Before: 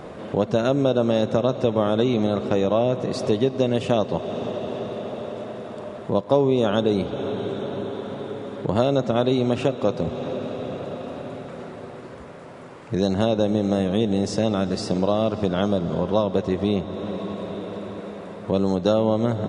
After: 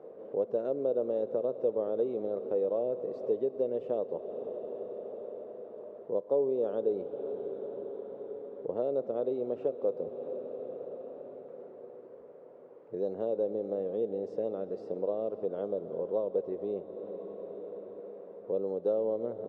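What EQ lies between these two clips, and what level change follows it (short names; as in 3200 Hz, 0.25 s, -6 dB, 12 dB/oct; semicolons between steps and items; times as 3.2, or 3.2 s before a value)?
band-pass 470 Hz, Q 4.1; -4.5 dB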